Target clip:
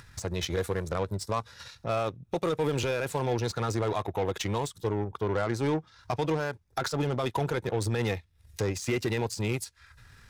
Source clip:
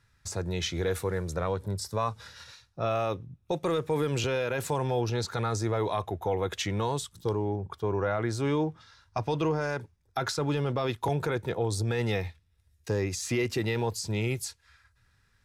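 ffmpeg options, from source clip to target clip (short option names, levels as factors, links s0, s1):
-af "acompressor=mode=upward:threshold=0.0282:ratio=2.5,aeval=exprs='0.126*(cos(1*acos(clip(val(0)/0.126,-1,1)))-cos(1*PI/2))+0.00631*(cos(5*acos(clip(val(0)/0.126,-1,1)))-cos(5*PI/2))+0.0126*(cos(7*acos(clip(val(0)/0.126,-1,1)))-cos(7*PI/2))':c=same,atempo=1.5"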